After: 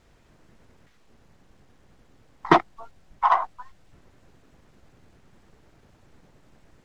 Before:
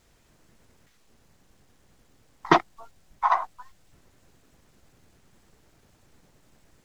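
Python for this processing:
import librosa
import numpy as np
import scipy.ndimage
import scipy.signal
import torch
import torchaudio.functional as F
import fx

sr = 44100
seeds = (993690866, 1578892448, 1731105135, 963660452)

p1 = fx.lowpass(x, sr, hz=2600.0, slope=6)
p2 = 10.0 ** (-20.5 / 20.0) * np.tanh(p1 / 10.0 ** (-20.5 / 20.0))
p3 = p1 + F.gain(torch.from_numpy(p2), -6.5).numpy()
y = F.gain(torch.from_numpy(p3), 1.0).numpy()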